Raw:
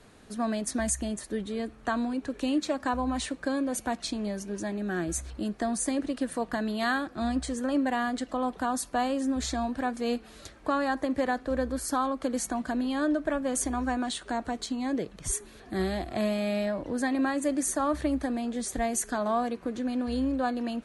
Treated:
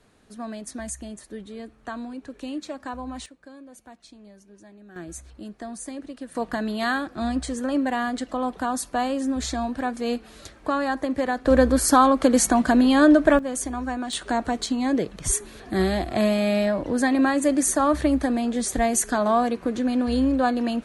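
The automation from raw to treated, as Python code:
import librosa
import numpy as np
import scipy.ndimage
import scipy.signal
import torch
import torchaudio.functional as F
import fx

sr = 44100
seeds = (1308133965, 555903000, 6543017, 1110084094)

y = fx.gain(x, sr, db=fx.steps((0.0, -5.0), (3.26, -16.0), (4.96, -6.5), (6.35, 3.0), (11.45, 12.0), (13.39, 0.5), (14.13, 7.0)))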